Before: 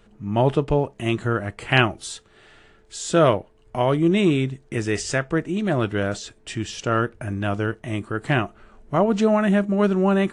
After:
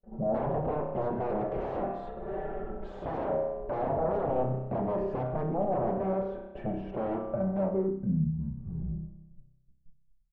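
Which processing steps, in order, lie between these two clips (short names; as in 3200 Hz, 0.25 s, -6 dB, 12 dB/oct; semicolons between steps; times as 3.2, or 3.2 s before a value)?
tape stop at the end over 2.89 s; Doppler pass-by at 2.35, 19 m/s, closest 21 m; gate -59 dBFS, range -44 dB; tone controls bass +1 dB, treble -13 dB; comb 5.2 ms, depth 94%; de-hum 78.36 Hz, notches 35; compressor 2:1, threshold -45 dBFS, peak gain reduction 18.5 dB; sine folder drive 14 dB, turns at -26.5 dBFS; spring tank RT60 1 s, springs 31 ms, chirp 25 ms, DRR 3.5 dB; low-pass sweep 660 Hz -> 130 Hz, 7.64–8.32; gain -3.5 dB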